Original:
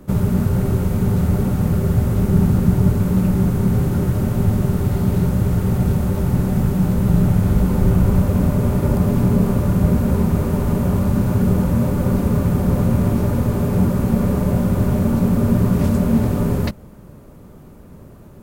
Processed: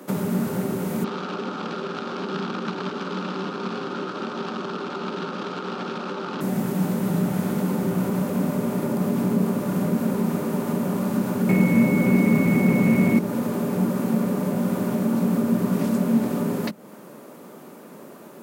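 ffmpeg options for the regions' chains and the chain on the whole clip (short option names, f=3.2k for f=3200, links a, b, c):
-filter_complex "[0:a]asettb=1/sr,asplit=3[a][b][c];[a]atrim=end=1.044[d];[b]atrim=start=1.04:end=6.41,asetpts=PTS-STARTPTS,afade=t=in:d=0.004:c=qsin,afade=t=out:st=5.366:d=0.004:c=qsin,acrusher=bits=4:mode=log:mix=0:aa=0.000001,highpass=330,equalizer=f=640:t=q:w=4:g=-6,equalizer=f=1.3k:t=q:w=4:g=9,equalizer=f=2k:t=q:w=4:g=-10,lowpass=f=4.4k:w=0.5412,lowpass=f=4.4k:w=1.3066[e];[c]atrim=start=6.406[f];[d][e]acrossfade=d=0.004:c1=hsin:c2=qsin[g];[g][f]acrossfade=d=0.004:c1=qsin:c2=hsin,asettb=1/sr,asplit=3[h][i][j];[h]atrim=end=11.494[k];[i]atrim=start=11.49:end=13.19,asetpts=PTS-STARTPTS,afade=t=in:d=0.004:c=qsin,afade=t=out:st=1.696:d=0.004:c=qsin,aeval=exprs='val(0)+0.0355*sin(2*PI*2200*n/s)':c=same,aeval=exprs='0.631*sin(PI/2*1.58*val(0)/0.631)':c=same[l];[j]atrim=start=13.186[m];[k][l]acrossfade=d=0.004:c1=hsin:c2=qsin[n];[n][m]acrossfade=d=0.004:c1=qsin:c2=hsin,highpass=f=200:w=0.5412,highpass=f=200:w=1.3066,lowshelf=f=290:g=-8.5,acrossover=split=260[o][p];[p]acompressor=threshold=-38dB:ratio=3[q];[o][q]amix=inputs=2:normalize=0,volume=6.5dB"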